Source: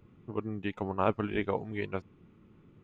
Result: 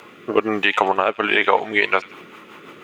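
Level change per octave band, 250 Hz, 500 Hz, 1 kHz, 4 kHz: +8.0 dB, +12.5 dB, +16.5 dB, +23.5 dB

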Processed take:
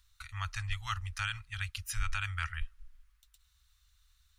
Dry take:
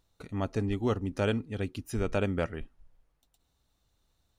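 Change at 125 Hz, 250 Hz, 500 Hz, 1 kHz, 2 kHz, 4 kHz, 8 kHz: -5.0 dB, under -30 dB, under -35 dB, -1.0 dB, +3.5 dB, +4.0 dB, +6.0 dB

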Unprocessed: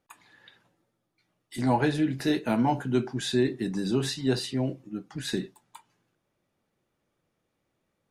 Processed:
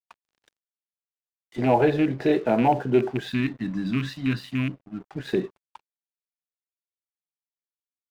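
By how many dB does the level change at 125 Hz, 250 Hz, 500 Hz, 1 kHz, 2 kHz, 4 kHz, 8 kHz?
+2.0 dB, +2.5 dB, +5.5 dB, +5.0 dB, +3.0 dB, -4.5 dB, under -10 dB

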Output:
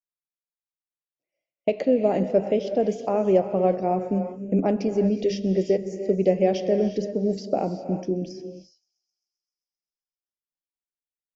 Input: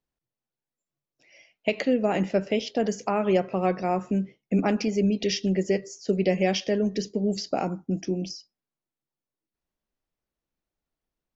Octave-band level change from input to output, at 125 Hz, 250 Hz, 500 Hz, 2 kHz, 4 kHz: +0.5 dB, +1.0 dB, +4.0 dB, -8.5 dB, -8.5 dB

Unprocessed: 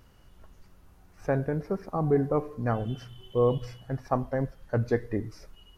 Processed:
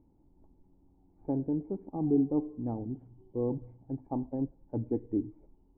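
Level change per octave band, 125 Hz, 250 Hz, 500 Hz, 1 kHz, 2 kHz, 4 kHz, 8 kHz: -8.5 dB, +1.5 dB, -9.0 dB, -11.5 dB, under -35 dB, under -35 dB, no reading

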